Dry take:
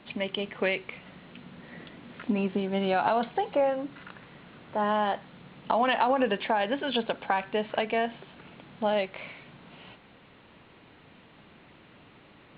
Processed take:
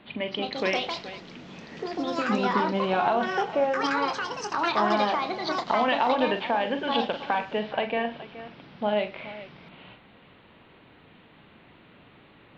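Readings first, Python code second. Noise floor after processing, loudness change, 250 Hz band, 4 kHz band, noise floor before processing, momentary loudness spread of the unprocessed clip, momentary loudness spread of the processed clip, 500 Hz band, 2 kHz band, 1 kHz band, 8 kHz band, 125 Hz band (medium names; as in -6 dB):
-55 dBFS, +2.0 dB, +2.0 dB, +4.0 dB, -56 dBFS, 21 LU, 17 LU, +1.5 dB, +3.5 dB, +3.0 dB, no reading, +0.5 dB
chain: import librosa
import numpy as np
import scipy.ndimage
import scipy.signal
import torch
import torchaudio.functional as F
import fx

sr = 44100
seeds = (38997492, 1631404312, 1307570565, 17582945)

y = fx.echo_multitap(x, sr, ms=(43, 110, 422), db=(-9.0, -20.0, -15.0))
y = fx.echo_pitch(y, sr, ms=269, semitones=5, count=2, db_per_echo=-3.0)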